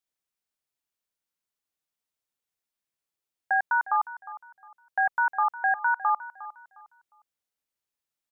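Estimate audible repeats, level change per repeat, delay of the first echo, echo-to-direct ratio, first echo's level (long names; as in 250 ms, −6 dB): 2, −11.0 dB, 357 ms, −15.5 dB, −16.0 dB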